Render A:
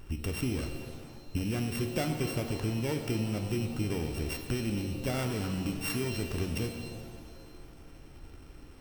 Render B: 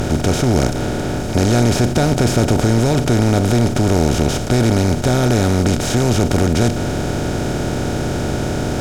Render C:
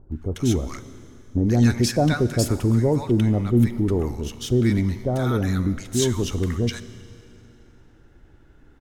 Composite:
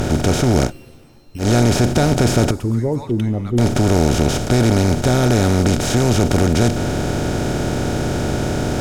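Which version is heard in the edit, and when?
B
0:00.68–0:01.43: punch in from A, crossfade 0.10 s
0:02.51–0:03.58: punch in from C

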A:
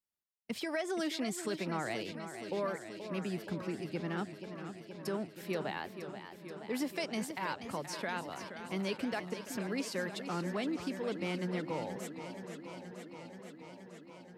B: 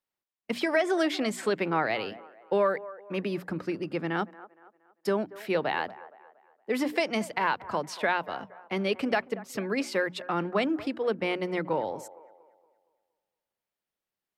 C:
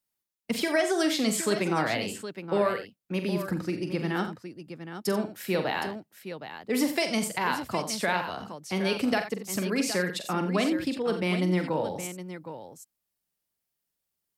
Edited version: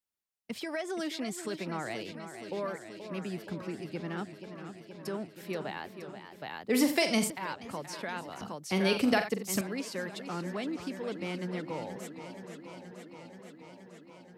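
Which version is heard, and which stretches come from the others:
A
0:06.42–0:07.30: punch in from C
0:08.41–0:09.61: punch in from C
not used: B

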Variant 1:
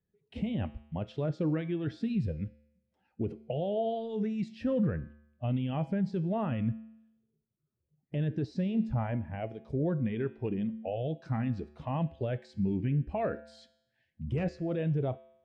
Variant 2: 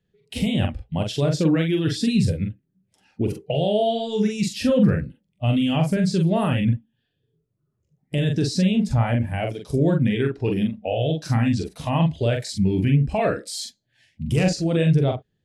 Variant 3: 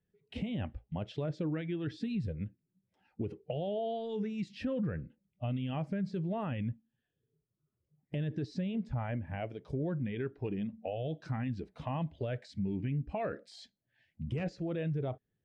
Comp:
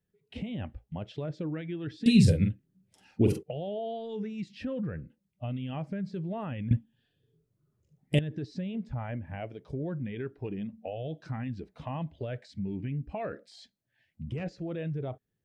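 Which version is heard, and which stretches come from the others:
3
0:02.06–0:03.43: punch in from 2
0:06.71–0:08.19: punch in from 2
not used: 1

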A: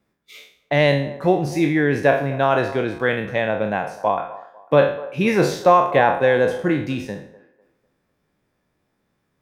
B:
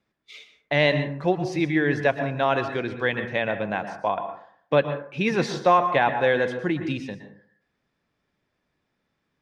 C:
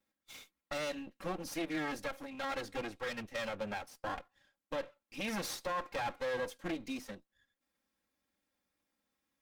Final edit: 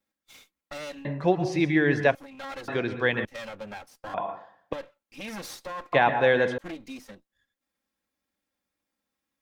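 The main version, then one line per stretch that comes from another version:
C
0:01.05–0:02.15: punch in from B
0:02.68–0:03.25: punch in from B
0:04.14–0:04.73: punch in from B
0:05.93–0:06.58: punch in from B
not used: A

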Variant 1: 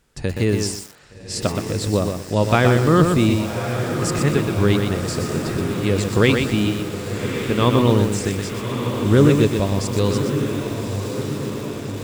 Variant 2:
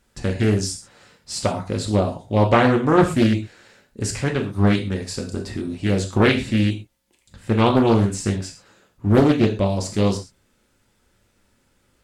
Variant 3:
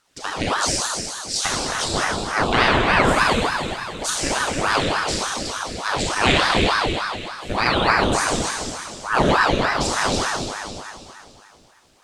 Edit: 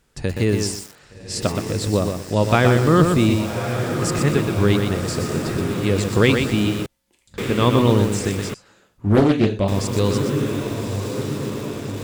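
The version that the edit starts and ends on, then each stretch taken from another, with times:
1
0:06.86–0:07.38: punch in from 2
0:08.54–0:09.68: punch in from 2
not used: 3

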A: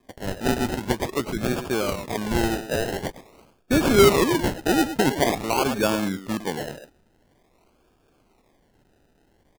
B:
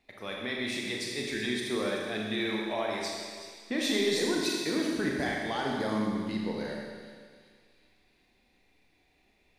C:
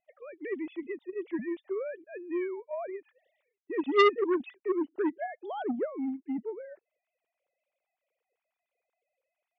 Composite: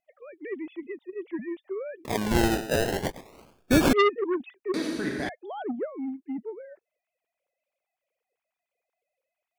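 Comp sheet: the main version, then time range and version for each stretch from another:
C
0:02.05–0:03.93: punch in from A
0:04.74–0:05.29: punch in from B

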